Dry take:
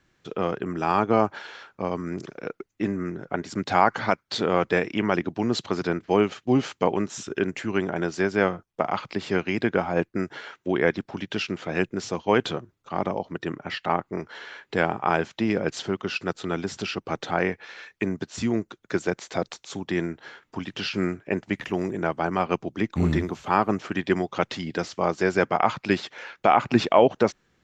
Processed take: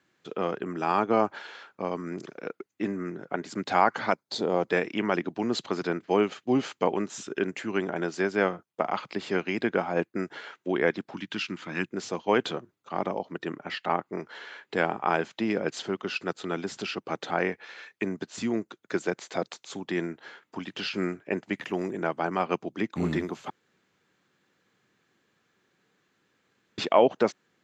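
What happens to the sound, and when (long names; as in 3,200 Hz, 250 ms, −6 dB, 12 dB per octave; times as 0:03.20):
0:04.13–0:04.69: flat-topped bell 1,900 Hz −9.5 dB
0:11.14–0:11.92: flat-topped bell 550 Hz −10.5 dB 1.2 octaves
0:23.50–0:26.78: fill with room tone
whole clip: high-pass filter 180 Hz 12 dB per octave; notch filter 5,600 Hz, Q 18; level −2.5 dB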